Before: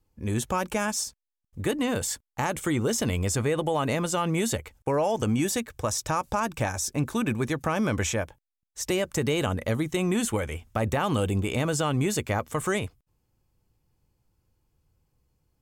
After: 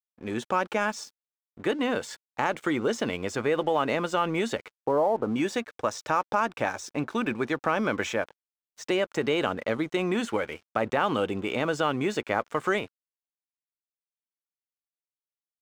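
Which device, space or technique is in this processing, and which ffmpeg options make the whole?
pocket radio on a weak battery: -filter_complex "[0:a]asettb=1/sr,asplit=3[link_01][link_02][link_03];[link_01]atrim=end=4.754[link_04];[link_02]atrim=start=4.75:end=5.36,asetpts=PTS-STARTPTS,afade=type=in:duration=0.004:curve=qsin,afade=type=out:start_time=0.606:duration=0.004:curve=qsin,lowpass=frequency=1200:width=0.5412,lowpass=frequency=1200:width=1.3066[link_05];[link_03]atrim=start=5.356[link_06];[link_04][link_05]acrossfade=duration=0.004:curve1=hsin:curve2=qsin[link_07];[link_07][link_06]acrossfade=duration=0.004:curve1=qsin:curve2=hsin,highpass=260,lowpass=3700,aeval=exprs='sgn(val(0))*max(abs(val(0))-0.00237,0)':channel_layout=same,equalizer=frequency=1400:width_type=o:width=0.21:gain=4,volume=2dB"

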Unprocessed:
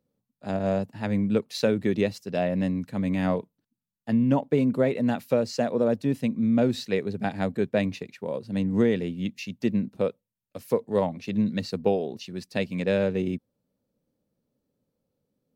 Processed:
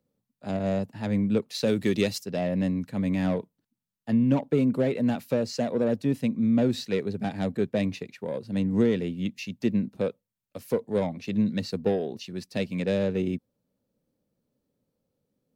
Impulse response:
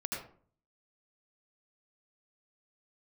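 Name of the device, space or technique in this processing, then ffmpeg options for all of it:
one-band saturation: -filter_complex "[0:a]acrossover=split=490|2900[link_01][link_02][link_03];[link_02]asoftclip=type=tanh:threshold=-30dB[link_04];[link_01][link_04][link_03]amix=inputs=3:normalize=0,asplit=3[link_05][link_06][link_07];[link_05]afade=type=out:start_time=1.66:duration=0.02[link_08];[link_06]highshelf=frequency=2600:gain=11.5,afade=type=in:start_time=1.66:duration=0.02,afade=type=out:start_time=2.23:duration=0.02[link_09];[link_07]afade=type=in:start_time=2.23:duration=0.02[link_10];[link_08][link_09][link_10]amix=inputs=3:normalize=0"

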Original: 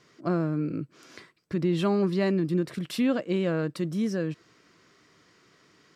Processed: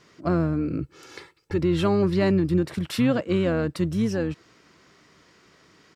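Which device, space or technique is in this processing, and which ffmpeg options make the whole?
octave pedal: -filter_complex "[0:a]asplit=2[link_01][link_02];[link_02]asetrate=22050,aresample=44100,atempo=2,volume=-9dB[link_03];[link_01][link_03]amix=inputs=2:normalize=0,asettb=1/sr,asplit=3[link_04][link_05][link_06];[link_04]atrim=end=0.824[link_07];[link_05]atrim=start=0.82:end=1.59,asetpts=PTS-STARTPTS,afade=type=in:duration=0.004:curve=qsin,afade=type=out:start_time=0.766:duration=0.004:curve=qsin,aecho=1:1:2.3:0.72,atrim=end_sample=33957[link_08];[link_06]atrim=start=1.586[link_09];[link_07][link_08]acrossfade=duration=0.004:curve1=hsin:curve2=qsin[link_10];[link_10][link_09]acrossfade=duration=0.004:curve1=qsin:curve2=hsin,volume=3.5dB"

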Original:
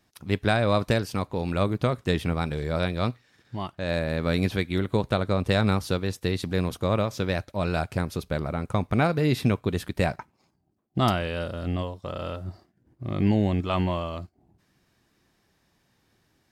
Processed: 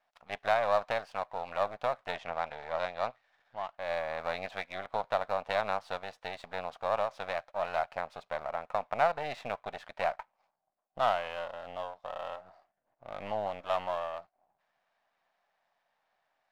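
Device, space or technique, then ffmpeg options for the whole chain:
crystal radio: -filter_complex "[0:a]highpass=240,lowpass=2700,aeval=exprs='if(lt(val(0),0),0.251*val(0),val(0))':channel_layout=same,asettb=1/sr,asplit=3[link_01][link_02][link_03];[link_01]atrim=end=2.154[link_04];[link_02]atrim=start=2.15:end=3.75,asetpts=PTS-STARTPTS,afade=type=in:duration=0.004:curve=qsin,afade=type=out:start_time=1.596:duration=0.004:curve=qsin,lowpass=7500[link_05];[link_03]atrim=start=3.746[link_06];[link_04][link_05]acrossfade=duration=0.004:curve1=hsin:curve2=qsin[link_07];[link_07][link_06]acrossfade=duration=0.004:curve1=qsin:curve2=hsin,lowshelf=frequency=480:width_type=q:width=3:gain=-11.5,volume=-3.5dB"

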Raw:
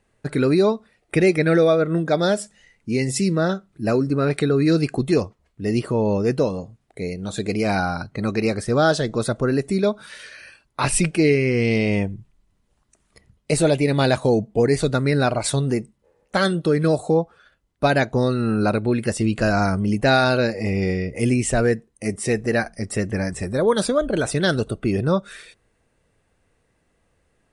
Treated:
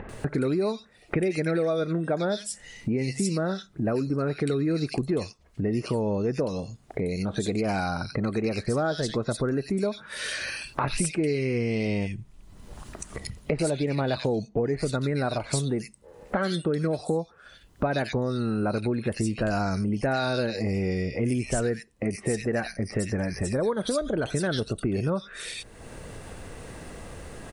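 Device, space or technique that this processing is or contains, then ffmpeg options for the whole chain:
upward and downward compression: -filter_complex "[0:a]asettb=1/sr,asplit=3[link_01][link_02][link_03];[link_01]atrim=end=13.614[link_04];[link_02]atrim=start=13.61:end=14.7,asetpts=PTS-STARTPTS,afade=type=in:duration=0.004:curve=qsin,afade=type=out:start_time=1.086:duration=0.004:curve=qsin,lowpass=5900[link_05];[link_03]atrim=start=14.696[link_06];[link_04][link_05]acrossfade=duration=0.004:curve1=hsin:curve2=qsin[link_07];[link_07][link_06]acrossfade=duration=0.004:curve1=qsin:curve2=hsin,acrossover=split=2200[link_08][link_09];[link_09]adelay=90[link_10];[link_08][link_10]amix=inputs=2:normalize=0,acompressor=mode=upward:threshold=-27dB:ratio=2.5,acompressor=threshold=-30dB:ratio=4,volume=4.5dB"

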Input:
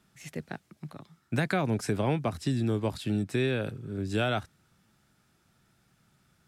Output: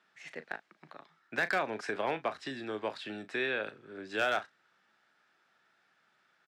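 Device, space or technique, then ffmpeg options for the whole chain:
megaphone: -filter_complex "[0:a]highpass=530,lowpass=3800,equalizer=frequency=1700:width_type=o:width=0.46:gain=5.5,asoftclip=type=hard:threshold=-22dB,asplit=2[link_01][link_02];[link_02]adelay=37,volume=-13dB[link_03];[link_01][link_03]amix=inputs=2:normalize=0"

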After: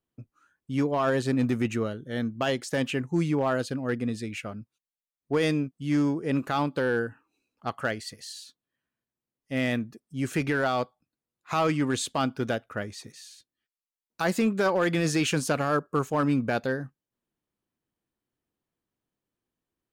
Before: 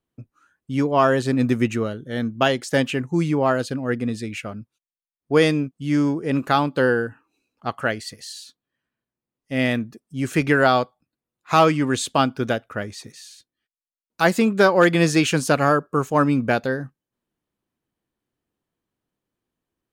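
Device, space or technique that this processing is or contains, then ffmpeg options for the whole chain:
limiter into clipper: -af "alimiter=limit=-11dB:level=0:latency=1:release=16,asoftclip=type=hard:threshold=-13dB,volume=-4.5dB"

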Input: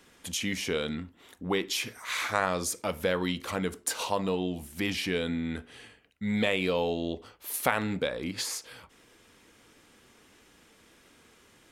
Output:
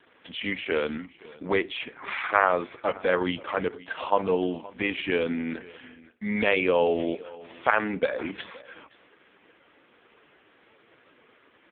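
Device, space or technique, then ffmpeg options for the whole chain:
satellite phone: -af "highpass=320,lowpass=3000,aecho=1:1:521:0.1,volume=8dB" -ar 8000 -c:a libopencore_amrnb -b:a 4750

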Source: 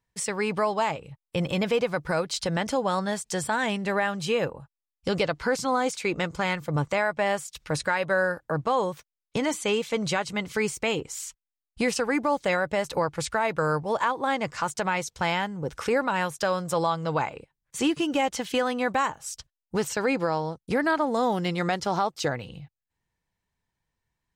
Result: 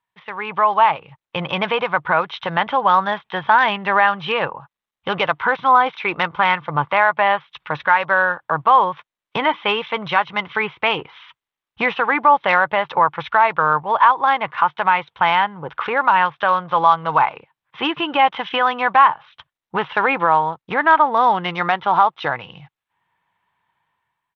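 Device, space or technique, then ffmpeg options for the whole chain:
Bluetooth headset: -af "highpass=190,equalizer=frequency=250:width_type=o:width=1:gain=-9,equalizer=frequency=500:width_type=o:width=1:gain=-7,equalizer=frequency=1000:width_type=o:width=1:gain=10,dynaudnorm=framelen=160:gausssize=7:maxgain=14dB,aresample=8000,aresample=44100,volume=-1dB" -ar 32000 -c:a sbc -b:a 64k

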